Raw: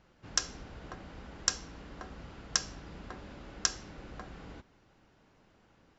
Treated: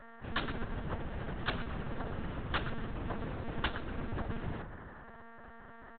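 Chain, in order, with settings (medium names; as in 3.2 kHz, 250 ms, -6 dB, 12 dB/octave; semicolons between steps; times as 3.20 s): bass shelf 360 Hz +7 dB; comb 5.2 ms, depth 40%; mains buzz 120 Hz, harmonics 16, -56 dBFS 0 dB/octave; on a send: filtered feedback delay 119 ms, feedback 61%, low-pass 1.6 kHz, level -7.5 dB; on the sum: monotone LPC vocoder at 8 kHz 230 Hz; trim +2.5 dB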